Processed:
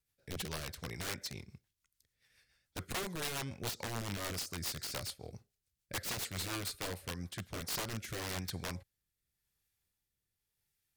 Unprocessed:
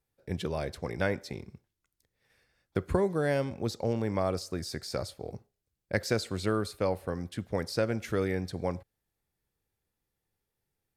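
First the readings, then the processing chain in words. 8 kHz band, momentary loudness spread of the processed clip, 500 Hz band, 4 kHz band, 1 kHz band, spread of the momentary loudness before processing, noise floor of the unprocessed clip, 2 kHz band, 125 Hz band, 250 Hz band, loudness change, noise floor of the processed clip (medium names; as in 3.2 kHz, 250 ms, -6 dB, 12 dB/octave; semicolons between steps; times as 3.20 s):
+4.5 dB, 10 LU, -16.0 dB, +1.0 dB, -7.5 dB, 11 LU, -85 dBFS, -5.0 dB, -9.0 dB, -12.0 dB, -7.5 dB, under -85 dBFS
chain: amplifier tone stack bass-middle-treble 5-5-5; integer overflow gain 41.5 dB; rotary cabinet horn 7 Hz, later 0.9 Hz, at 7.05 s; trim +11.5 dB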